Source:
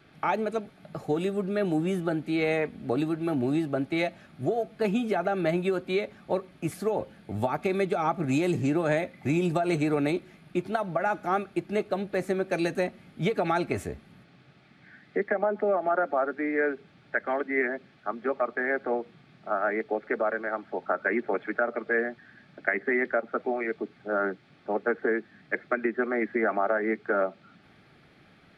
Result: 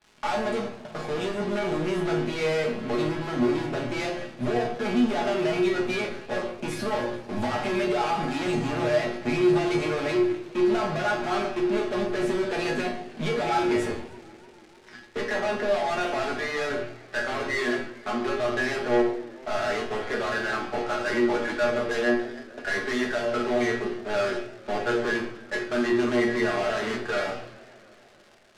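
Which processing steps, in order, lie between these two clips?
bass shelf 190 Hz -10 dB; de-hum 58.66 Hz, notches 27; flange 0.14 Hz, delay 3.4 ms, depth 2.2 ms, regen -53%; in parallel at -5.5 dB: fuzz box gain 48 dB, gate -54 dBFS; on the sum: feedback comb 120 Hz, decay 0.29 s, harmonics all, mix 90%; crackle 320 per s -41 dBFS; distance through air 69 m; simulated room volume 660 m³, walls furnished, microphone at 1.4 m; modulated delay 147 ms, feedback 78%, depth 215 cents, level -22 dB

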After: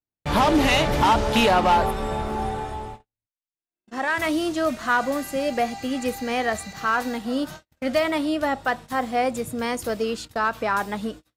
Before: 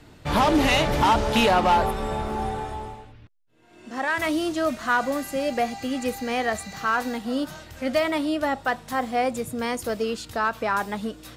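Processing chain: gate -37 dBFS, range -49 dB; trim +1 dB

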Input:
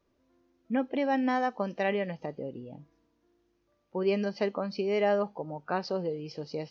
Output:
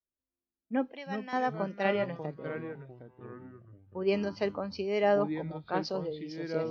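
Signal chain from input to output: 0.92–1.33 s: high-pass 1.5 kHz 6 dB/octave; ever faster or slower copies 177 ms, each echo -4 st, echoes 3, each echo -6 dB; three bands expanded up and down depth 70%; trim -2 dB

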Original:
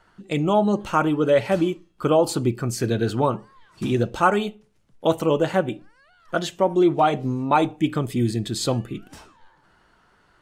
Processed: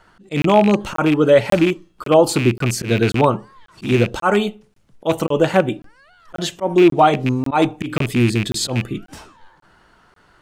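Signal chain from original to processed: rattle on loud lows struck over -25 dBFS, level -19 dBFS; slow attack 104 ms; crackling interface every 0.54 s, samples 1024, zero, from 0.42 s; trim +6 dB

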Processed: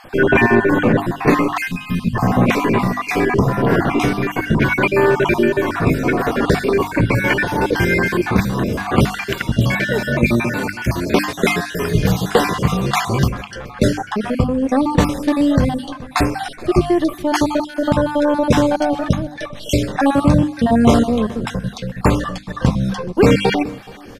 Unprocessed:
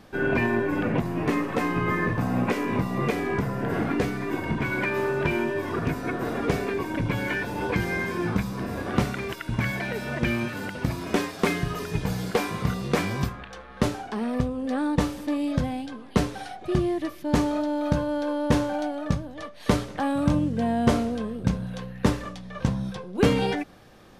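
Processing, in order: random holes in the spectrogram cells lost 41%; on a send: feedback delay 425 ms, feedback 23%, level -23 dB; on the sum: time-frequency box 1.68–2.15 s, 260–2400 Hz -20 dB; hum notches 50/100/150/200/250/300 Hz; loudness maximiser +14 dB; trim -1 dB

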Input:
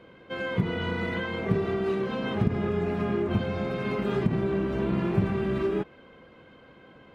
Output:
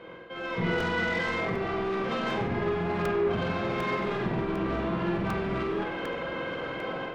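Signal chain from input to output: low-pass 2.4 kHz 6 dB/octave; bass shelf 340 Hz -11.5 dB; reverse; compression 6:1, threshold -44 dBFS, peak gain reduction 16.5 dB; reverse; peak limiter -40 dBFS, peak gain reduction 6.5 dB; level rider gain up to 12.5 dB; saturation -34.5 dBFS, distortion -13 dB; on a send: flutter echo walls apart 8 m, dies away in 0.58 s; on the sum: simulated room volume 190 m³, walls furnished, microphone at 0.7 m; crackling interface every 0.75 s, samples 128, repeat, from 0.80 s; trim +8.5 dB

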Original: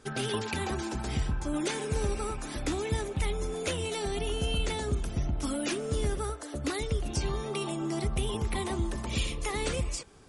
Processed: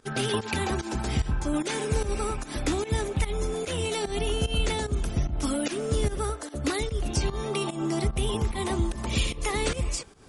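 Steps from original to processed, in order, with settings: volume shaper 148 bpm, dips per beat 1, -15 dB, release 157 ms; trim +4.5 dB

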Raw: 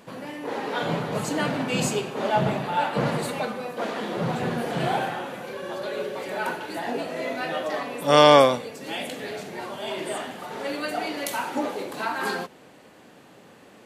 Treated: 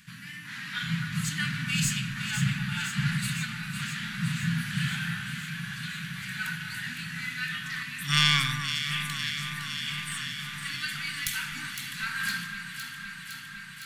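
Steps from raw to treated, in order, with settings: tracing distortion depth 0.028 ms; Chebyshev band-stop 170–1600 Hz, order 3; on a send: echo whose repeats swap between lows and highs 255 ms, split 1.8 kHz, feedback 87%, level -7 dB; on the sum: trim +1.5 dB

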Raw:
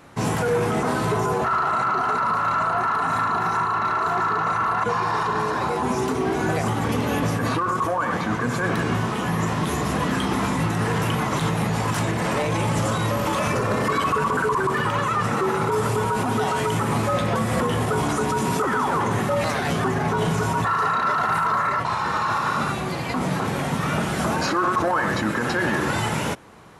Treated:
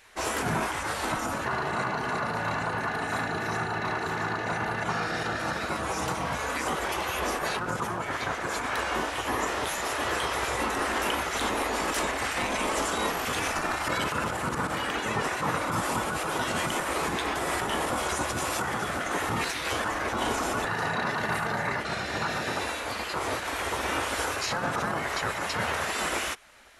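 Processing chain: spectral gate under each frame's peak -10 dB weak

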